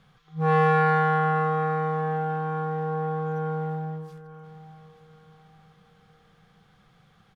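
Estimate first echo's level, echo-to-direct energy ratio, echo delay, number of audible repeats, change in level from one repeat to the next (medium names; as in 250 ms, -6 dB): -17.0 dB, -16.5 dB, 887 ms, 3, -9.0 dB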